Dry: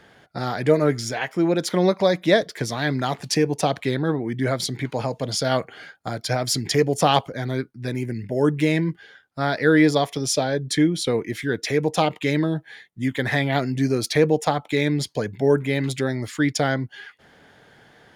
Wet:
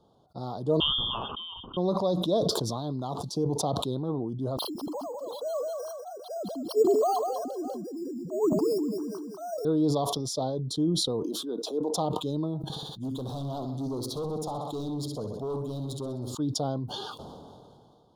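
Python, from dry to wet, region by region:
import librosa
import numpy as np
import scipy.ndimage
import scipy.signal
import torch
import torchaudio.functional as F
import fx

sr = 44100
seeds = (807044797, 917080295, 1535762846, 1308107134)

y = fx.chain(x, sr, fx.freq_invert(carrier_hz=3400),
    fx.band_squash(depth_pct=100), at=(0.8, 1.77))
y = fx.chain(y, sr, fx.sine_speech(),
    fx.resample_bad(factor=6, down='filtered', up='hold'),
    fx.echo_feedback(ms=196, feedback_pct=37, wet_db=-11.5), at=(4.57, 9.65))
y = fx.chain(y, sr, fx.steep_highpass(hz=230.0, slope=36),
    fx.dynamic_eq(hz=5600.0, q=1.6, threshold_db=-42.0, ratio=4.0, max_db=-5), at=(11.23, 11.94))
y = fx.chain(y, sr, fx.high_shelf(hz=8300.0, db=9.0),
    fx.echo_feedback(ms=64, feedback_pct=52, wet_db=-10.0),
    fx.clip_hard(threshold_db=-20.5), at=(12.57, 16.35))
y = scipy.signal.sosfilt(scipy.signal.cheby1(3, 1.0, [1100.0, 3700.0], 'bandstop', fs=sr, output='sos'), y)
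y = fx.bass_treble(y, sr, bass_db=0, treble_db=-9)
y = fx.sustainer(y, sr, db_per_s=24.0)
y = y * 10.0 ** (-8.5 / 20.0)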